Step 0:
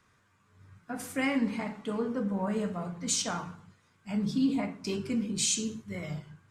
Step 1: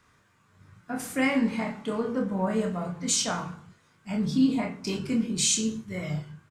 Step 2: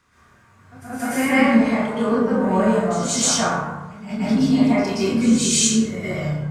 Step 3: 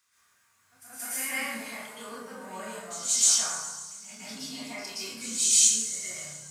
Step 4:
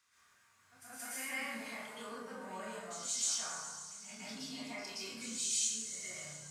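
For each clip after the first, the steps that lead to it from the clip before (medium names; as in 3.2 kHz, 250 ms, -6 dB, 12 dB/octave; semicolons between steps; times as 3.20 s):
doubling 27 ms -5 dB; trim +3 dB
pre-echo 177 ms -13 dB; plate-style reverb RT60 1 s, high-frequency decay 0.4×, pre-delay 105 ms, DRR -10 dB
pre-emphasis filter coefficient 0.97; feedback echo behind a high-pass 138 ms, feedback 70%, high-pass 5.3 kHz, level -11.5 dB
treble shelf 9.1 kHz -11 dB; compression 1.5:1, threshold -50 dBFS, peak gain reduction 11 dB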